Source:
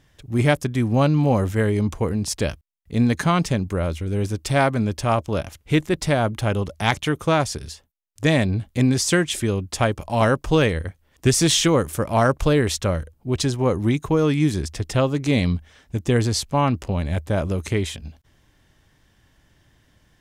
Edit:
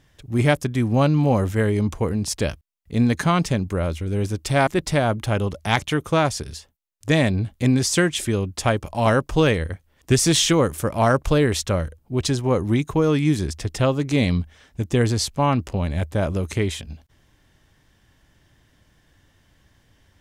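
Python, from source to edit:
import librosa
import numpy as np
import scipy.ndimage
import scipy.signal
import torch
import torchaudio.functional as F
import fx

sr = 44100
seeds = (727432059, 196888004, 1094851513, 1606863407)

y = fx.edit(x, sr, fx.cut(start_s=4.67, length_s=1.15), tone=tone)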